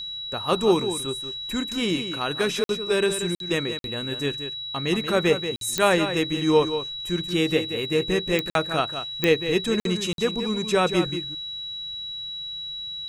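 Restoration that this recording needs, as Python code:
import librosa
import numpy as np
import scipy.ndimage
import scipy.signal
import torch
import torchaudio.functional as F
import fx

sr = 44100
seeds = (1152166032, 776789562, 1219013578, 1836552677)

y = fx.fix_declick_ar(x, sr, threshold=10.0)
y = fx.notch(y, sr, hz=3900.0, q=30.0)
y = fx.fix_interpolate(y, sr, at_s=(2.64, 3.35, 3.79, 5.56, 8.5, 9.8, 10.13), length_ms=52.0)
y = fx.fix_echo_inverse(y, sr, delay_ms=182, level_db=-9.5)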